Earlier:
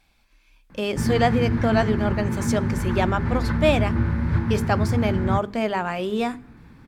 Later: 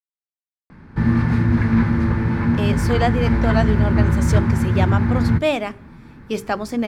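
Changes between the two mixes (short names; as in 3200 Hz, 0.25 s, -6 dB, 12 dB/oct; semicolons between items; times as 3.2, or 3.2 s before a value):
speech: entry +1.80 s; background +6.0 dB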